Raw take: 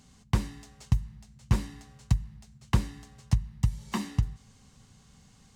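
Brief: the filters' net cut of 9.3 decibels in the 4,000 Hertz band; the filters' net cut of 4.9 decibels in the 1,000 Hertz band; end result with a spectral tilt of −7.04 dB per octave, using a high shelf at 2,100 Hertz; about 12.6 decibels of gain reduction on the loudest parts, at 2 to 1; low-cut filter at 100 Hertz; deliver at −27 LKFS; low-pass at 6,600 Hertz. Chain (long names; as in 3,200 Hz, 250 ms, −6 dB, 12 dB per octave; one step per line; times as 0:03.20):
high-pass filter 100 Hz
low-pass filter 6,600 Hz
parametric band 1,000 Hz −4 dB
high-shelf EQ 2,100 Hz −6.5 dB
parametric band 4,000 Hz −5.5 dB
downward compressor 2 to 1, threshold −45 dBFS
level +19 dB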